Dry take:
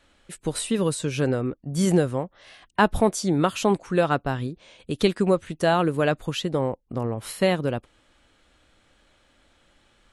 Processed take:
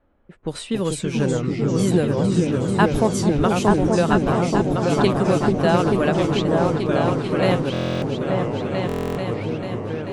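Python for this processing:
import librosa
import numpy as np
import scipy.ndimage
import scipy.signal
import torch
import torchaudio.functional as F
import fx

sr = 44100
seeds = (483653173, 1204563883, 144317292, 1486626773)

p1 = fx.env_lowpass(x, sr, base_hz=870.0, full_db=-21.0)
p2 = fx.echo_pitch(p1, sr, ms=190, semitones=-3, count=3, db_per_echo=-6.0)
p3 = p2 + fx.echo_opening(p2, sr, ms=440, hz=400, octaves=2, feedback_pct=70, wet_db=0, dry=0)
y = fx.buffer_glitch(p3, sr, at_s=(7.72, 8.87), block=1024, repeats=12)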